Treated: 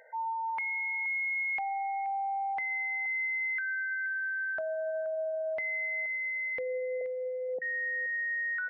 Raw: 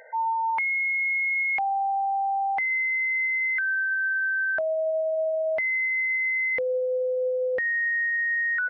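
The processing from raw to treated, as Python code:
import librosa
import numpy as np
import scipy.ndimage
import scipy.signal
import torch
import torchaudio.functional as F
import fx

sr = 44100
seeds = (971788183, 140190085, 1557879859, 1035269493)

y = fx.cheby1_bandpass(x, sr, low_hz=160.0, high_hz=790.0, order=4, at=(7.01, 7.62))
y = fx.echo_feedback(y, sr, ms=476, feedback_pct=16, wet_db=-15.0)
y = F.gain(torch.from_numpy(y), -8.0).numpy()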